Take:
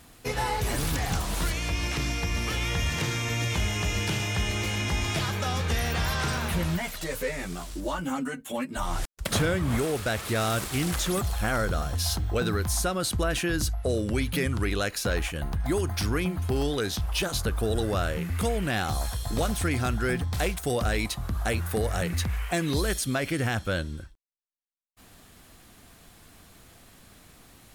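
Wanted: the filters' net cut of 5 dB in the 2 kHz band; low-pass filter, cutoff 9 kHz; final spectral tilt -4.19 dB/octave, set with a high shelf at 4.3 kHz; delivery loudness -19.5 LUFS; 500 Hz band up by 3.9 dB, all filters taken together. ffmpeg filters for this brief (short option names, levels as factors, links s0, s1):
-af "lowpass=9000,equalizer=f=500:t=o:g=5,equalizer=f=2000:t=o:g=-9,highshelf=f=4300:g=9,volume=2.37"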